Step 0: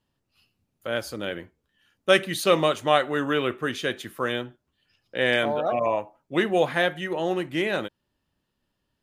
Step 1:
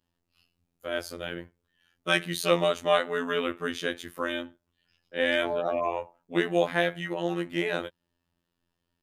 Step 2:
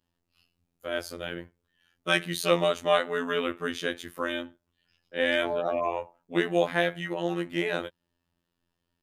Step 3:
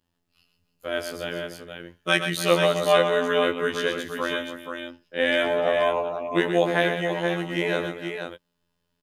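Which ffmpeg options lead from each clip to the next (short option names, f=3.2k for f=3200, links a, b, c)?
-af "afftfilt=real='hypot(re,im)*cos(PI*b)':imag='0':win_size=2048:overlap=0.75"
-af anull
-af "aecho=1:1:123|297|478:0.398|0.178|0.473,volume=3dB"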